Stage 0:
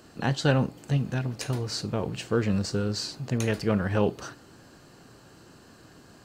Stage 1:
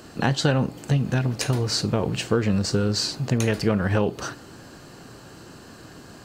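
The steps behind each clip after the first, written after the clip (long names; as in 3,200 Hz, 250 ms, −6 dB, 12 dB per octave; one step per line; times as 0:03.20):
downward compressor 6 to 1, threshold −25 dBFS, peak gain reduction 8 dB
level +8 dB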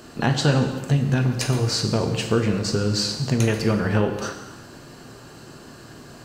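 reverb whose tail is shaped and stops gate 400 ms falling, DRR 4.5 dB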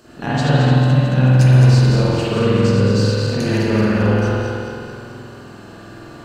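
feedback delay that plays each chunk backwards 109 ms, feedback 73%, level −5 dB
spring reverb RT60 1.8 s, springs 47 ms, chirp 40 ms, DRR −8.5 dB
level −6 dB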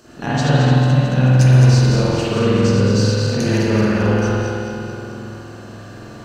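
parametric band 6,000 Hz +7 dB 0.28 octaves
feedback echo with a low-pass in the loop 465 ms, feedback 64%, level −16 dB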